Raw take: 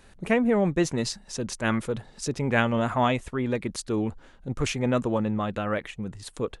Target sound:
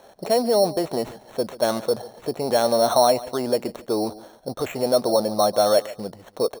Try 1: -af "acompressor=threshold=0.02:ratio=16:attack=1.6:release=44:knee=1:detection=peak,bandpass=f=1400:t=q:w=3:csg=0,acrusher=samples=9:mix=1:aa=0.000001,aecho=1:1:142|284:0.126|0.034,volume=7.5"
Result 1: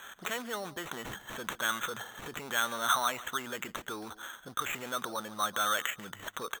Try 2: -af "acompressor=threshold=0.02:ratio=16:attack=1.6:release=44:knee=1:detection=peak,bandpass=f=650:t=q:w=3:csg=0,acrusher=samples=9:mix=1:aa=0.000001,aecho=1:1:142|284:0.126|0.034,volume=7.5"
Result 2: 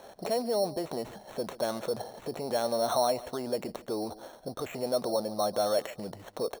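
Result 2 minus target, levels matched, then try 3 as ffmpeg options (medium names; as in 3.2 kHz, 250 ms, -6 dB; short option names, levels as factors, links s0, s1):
compression: peak gain reduction +10 dB
-af "acompressor=threshold=0.0668:ratio=16:attack=1.6:release=44:knee=1:detection=peak,bandpass=f=650:t=q:w=3:csg=0,acrusher=samples=9:mix=1:aa=0.000001,aecho=1:1:142|284:0.126|0.034,volume=7.5"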